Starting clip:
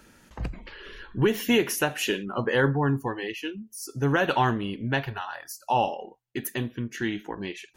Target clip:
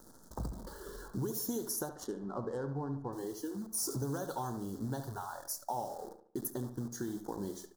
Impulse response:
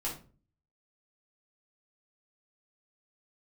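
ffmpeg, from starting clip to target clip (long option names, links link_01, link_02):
-filter_complex "[0:a]asettb=1/sr,asplit=3[link_01][link_02][link_03];[link_01]atrim=end=3.744[link_04];[link_02]atrim=start=3.74:end=4.18,asetpts=PTS-STARTPTS,afade=type=in:duration=0.004:curve=qsin,afade=type=out:start_time=0.436:duration=0.004:curve=qsin,aeval=exprs='val(0)+0.5*0.0141*sgn(val(0))':channel_layout=same[link_05];[link_03]atrim=start=4.176[link_06];[link_04][link_05]acrossfade=duration=0.004:curve1=hsin:curve2=qsin[link_07];[link_07][link_06]acrossfade=duration=0.004:curve1=qsin:curve2=hsin,highpass=frequency=42:poles=1,equalizer=frequency=1900:width=7.1:gain=-6.5,acrossover=split=4100[link_08][link_09];[link_08]acompressor=threshold=-36dB:ratio=8[link_10];[link_09]alimiter=level_in=2.5dB:limit=-24dB:level=0:latency=1:release=300,volume=-2.5dB[link_11];[link_10][link_11]amix=inputs=2:normalize=0,acrusher=bits=9:dc=4:mix=0:aa=0.000001,asettb=1/sr,asplit=3[link_12][link_13][link_14];[link_12]atrim=end=1.894[link_15];[link_13]atrim=start=1.89:end=3.13,asetpts=PTS-STARTPTS,afade=type=in:duration=0.004:curve=qsin,afade=type=out:start_time=1.236:duration=0.004:curve=qsin,adynamicsmooth=sensitivity=5.5:basefreq=1500[link_16];[link_14]atrim=start=3.126[link_17];[link_15][link_16]acrossfade=duration=0.004:curve1=hsin:curve2=qsin[link_18];[link_18][link_17]acrossfade=duration=0.004:curve1=qsin:curve2=hsin,asuperstop=centerf=2500:order=4:qfactor=0.63,asplit=2[link_19][link_20];[link_20]adelay=72,lowpass=frequency=2800:poles=1,volume=-9.5dB,asplit=2[link_21][link_22];[link_22]adelay=72,lowpass=frequency=2800:poles=1,volume=0.41,asplit=2[link_23][link_24];[link_24]adelay=72,lowpass=frequency=2800:poles=1,volume=0.41,asplit=2[link_25][link_26];[link_26]adelay=72,lowpass=frequency=2800:poles=1,volume=0.41[link_27];[link_21][link_23][link_25][link_27]amix=inputs=4:normalize=0[link_28];[link_19][link_28]amix=inputs=2:normalize=0,volume=1dB"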